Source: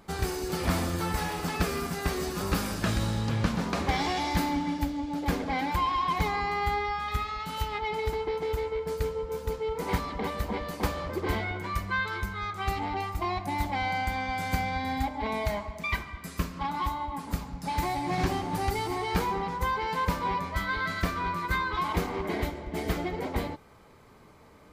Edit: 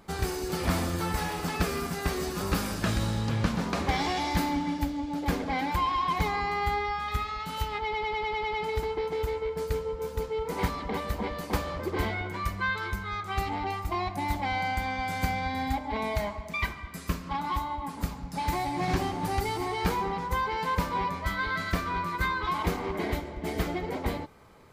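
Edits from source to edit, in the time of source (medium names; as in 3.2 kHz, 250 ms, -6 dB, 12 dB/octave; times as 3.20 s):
7.83 s: stutter 0.10 s, 8 plays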